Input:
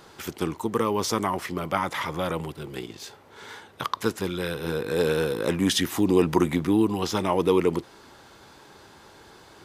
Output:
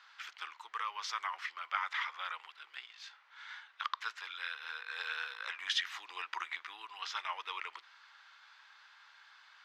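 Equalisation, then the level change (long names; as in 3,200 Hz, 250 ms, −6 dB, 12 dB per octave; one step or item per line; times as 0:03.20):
high-pass filter 1,300 Hz 24 dB per octave
high-frequency loss of the air 210 metres
−1.5 dB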